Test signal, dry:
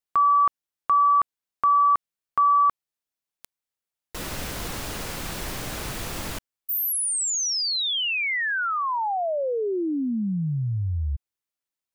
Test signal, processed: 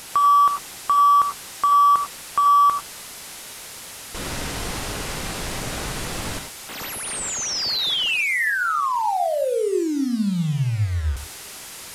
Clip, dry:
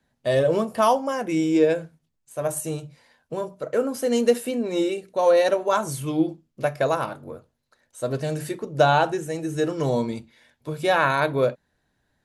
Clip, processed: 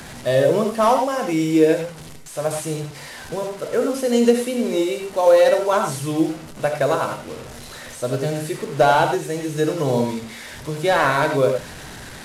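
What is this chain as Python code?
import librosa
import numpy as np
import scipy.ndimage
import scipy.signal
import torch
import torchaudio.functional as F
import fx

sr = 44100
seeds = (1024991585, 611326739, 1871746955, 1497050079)

y = fx.delta_mod(x, sr, bps=64000, step_db=-34.0)
y = fx.quant_float(y, sr, bits=6)
y = fx.rev_gated(y, sr, seeds[0], gate_ms=120, shape='rising', drr_db=4.5)
y = F.gain(torch.from_numpy(y), 2.5).numpy()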